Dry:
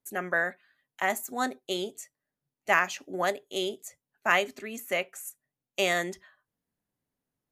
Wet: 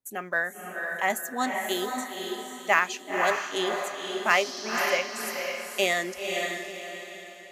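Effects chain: 4.29–4.97 s: band noise 4–6.2 kHz -42 dBFS; in parallel at -12 dB: short-mantissa float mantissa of 2-bit; on the sum: spectral noise reduction 6 dB; echo that smears into a reverb 515 ms, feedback 41%, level -3.5 dB

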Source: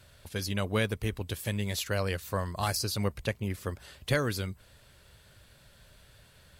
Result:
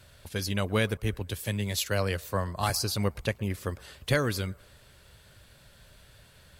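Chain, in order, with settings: on a send: feedback echo behind a band-pass 115 ms, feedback 55%, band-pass 900 Hz, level -22.5 dB; 0.97–2.70 s: on the sum: three bands expanded up and down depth 40%; trim +2 dB

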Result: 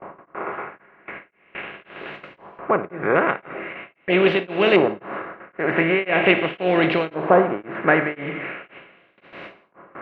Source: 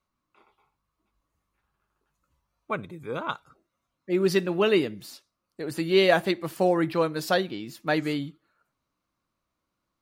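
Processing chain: spectral levelling over time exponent 0.4; LFO low-pass saw up 0.42 Hz 930–5000 Hz; gate with hold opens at -28 dBFS; resonant high shelf 3.4 kHz -13 dB, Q 3; Schroeder reverb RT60 0.82 s, DRR 11.5 dB; dynamic bell 1.8 kHz, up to -6 dB, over -31 dBFS, Q 1.2; tremolo of two beating tones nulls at 1.9 Hz; trim +2 dB

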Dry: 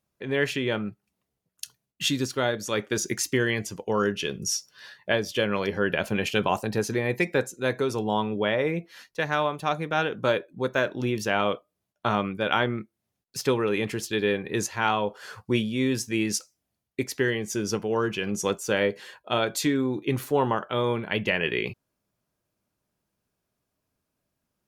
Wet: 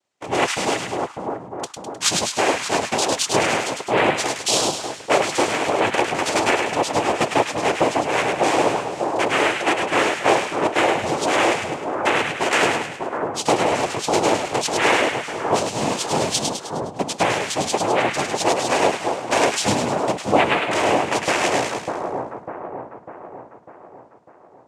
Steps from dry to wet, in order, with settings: high-pass 320 Hz 24 dB/octave; band-stop 2.3 kHz, Q 5.5; noise-vocoded speech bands 4; two-band feedback delay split 1.3 kHz, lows 599 ms, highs 103 ms, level -4 dB; trim +6.5 dB

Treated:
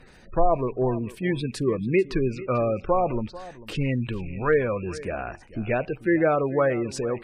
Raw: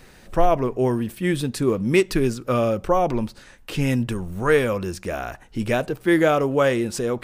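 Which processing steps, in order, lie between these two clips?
rattle on loud lows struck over -36 dBFS, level -29 dBFS; spectral gate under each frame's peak -25 dB strong; dynamic bell 240 Hz, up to -3 dB, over -34 dBFS, Q 2; low-pass that closes with the level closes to 2.2 kHz, closed at -15 dBFS; delay 443 ms -17.5 dB; trim -2.5 dB

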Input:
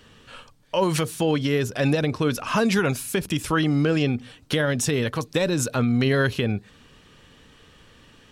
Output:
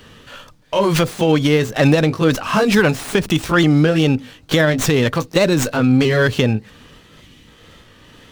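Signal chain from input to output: sawtooth pitch modulation +1.5 st, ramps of 605 ms; time-frequency box 7.20–7.47 s, 380–1900 Hz -8 dB; sliding maximum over 3 samples; trim +8.5 dB

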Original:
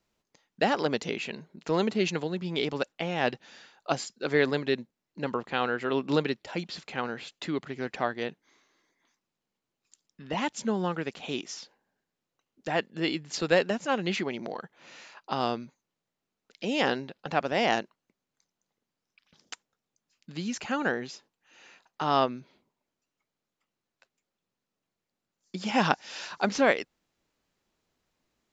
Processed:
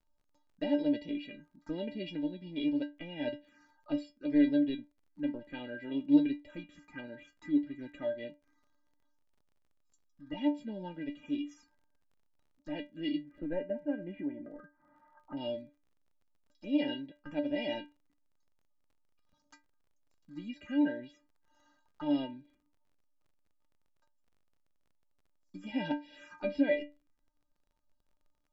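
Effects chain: touch-sensitive phaser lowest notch 370 Hz, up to 1.2 kHz, full sweep at -29.5 dBFS; 13.20–15.37 s: low-pass 1.7 kHz 24 dB/octave; inharmonic resonator 290 Hz, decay 0.26 s, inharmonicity 0.008; crackle 32 per s -63 dBFS; tilt EQ -3 dB/octave; trim +6.5 dB

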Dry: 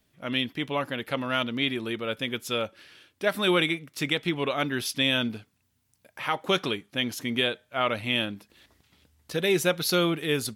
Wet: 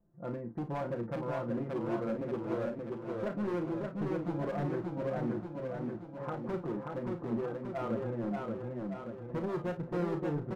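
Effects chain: comb 5.8 ms, depth 81%; compression 4:1, threshold -25 dBFS, peak gain reduction 9.5 dB; Gaussian low-pass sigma 9.1 samples; hard clipper -31 dBFS, distortion -9 dB; early reflections 34 ms -8 dB, 52 ms -13.5 dB; modulated delay 580 ms, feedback 58%, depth 88 cents, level -3 dB; trim -1.5 dB

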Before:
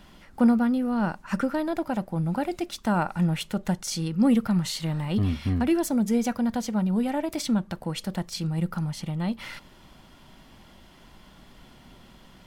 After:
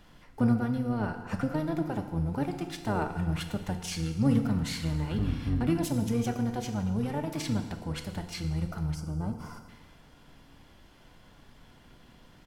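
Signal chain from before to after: FDN reverb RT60 1.4 s, low-frequency decay 0.95×, high-frequency decay 0.9×, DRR 5.5 dB; harmony voices -12 st -3 dB; time-frequency box 8.95–9.69 s, 1.6–4.6 kHz -16 dB; trim -7 dB

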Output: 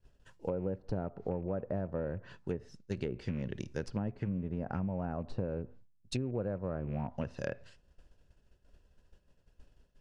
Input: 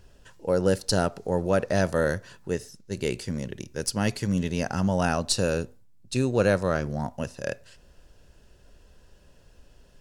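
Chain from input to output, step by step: rattle on loud lows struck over -30 dBFS, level -30 dBFS; low-pass that closes with the level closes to 880 Hz, closed at -22.5 dBFS; expander -44 dBFS; tone controls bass +3 dB, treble -4 dB; compression 12:1, threshold -28 dBFS, peak gain reduction 12.5 dB; trim -3 dB

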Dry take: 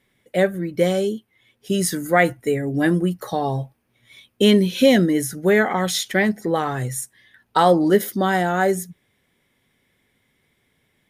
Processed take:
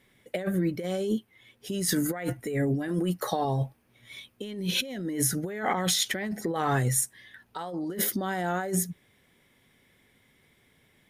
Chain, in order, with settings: 2.88–3.45 s: bass shelf 170 Hz -11 dB; compressor with a negative ratio -26 dBFS, ratio -1; trim -3.5 dB

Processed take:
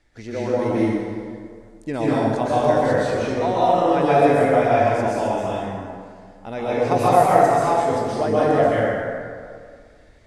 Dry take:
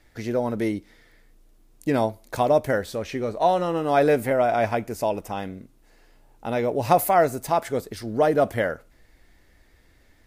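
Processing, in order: low-pass 9 kHz 24 dB/octave; plate-style reverb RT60 2 s, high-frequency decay 0.6×, pre-delay 115 ms, DRR -8.5 dB; trim -5 dB

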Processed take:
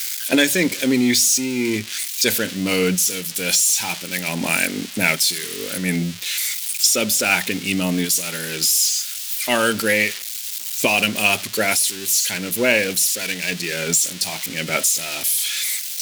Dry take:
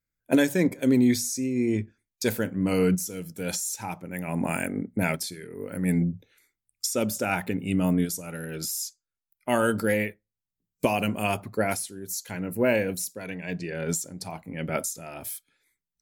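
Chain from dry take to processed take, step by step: zero-crossing glitches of -25 dBFS; frequency weighting D; in parallel at -9 dB: overload inside the chain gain 30 dB; on the sum: trim +3 dB

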